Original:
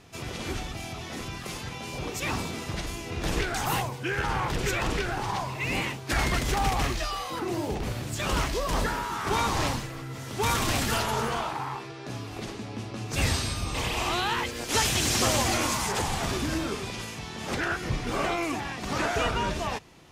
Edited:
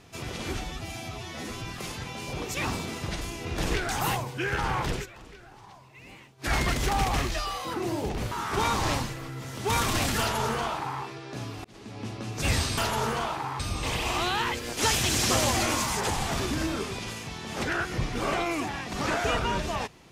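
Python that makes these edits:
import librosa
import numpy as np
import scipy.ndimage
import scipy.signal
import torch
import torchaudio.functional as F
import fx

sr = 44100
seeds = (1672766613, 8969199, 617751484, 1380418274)

y = fx.edit(x, sr, fx.stretch_span(start_s=0.61, length_s=0.69, factor=1.5),
    fx.fade_down_up(start_s=4.58, length_s=1.59, db=-19.5, fade_s=0.14),
    fx.cut(start_s=7.97, length_s=1.08),
    fx.duplicate(start_s=10.93, length_s=0.82, to_s=13.51),
    fx.fade_in_span(start_s=12.38, length_s=0.41), tone=tone)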